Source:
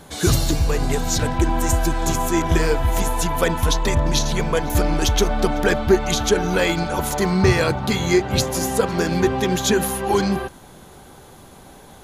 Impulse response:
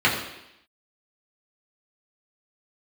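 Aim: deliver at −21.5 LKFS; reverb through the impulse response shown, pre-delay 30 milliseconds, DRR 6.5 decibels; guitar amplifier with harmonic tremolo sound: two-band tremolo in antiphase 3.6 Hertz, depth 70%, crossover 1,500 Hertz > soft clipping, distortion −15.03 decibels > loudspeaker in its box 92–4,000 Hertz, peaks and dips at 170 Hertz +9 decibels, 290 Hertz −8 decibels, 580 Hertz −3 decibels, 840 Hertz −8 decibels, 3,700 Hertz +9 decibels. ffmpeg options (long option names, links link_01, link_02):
-filter_complex "[0:a]asplit=2[link_01][link_02];[1:a]atrim=start_sample=2205,adelay=30[link_03];[link_02][link_03]afir=irnorm=-1:irlink=0,volume=-25.5dB[link_04];[link_01][link_04]amix=inputs=2:normalize=0,acrossover=split=1500[link_05][link_06];[link_05]aeval=exprs='val(0)*(1-0.7/2+0.7/2*cos(2*PI*3.6*n/s))':channel_layout=same[link_07];[link_06]aeval=exprs='val(0)*(1-0.7/2-0.7/2*cos(2*PI*3.6*n/s))':channel_layout=same[link_08];[link_07][link_08]amix=inputs=2:normalize=0,asoftclip=threshold=-14.5dB,highpass=92,equalizer=frequency=170:width_type=q:width=4:gain=9,equalizer=frequency=290:width_type=q:width=4:gain=-8,equalizer=frequency=580:width_type=q:width=4:gain=-3,equalizer=frequency=840:width_type=q:width=4:gain=-8,equalizer=frequency=3700:width_type=q:width=4:gain=9,lowpass=frequency=4000:width=0.5412,lowpass=frequency=4000:width=1.3066,volume=3dB"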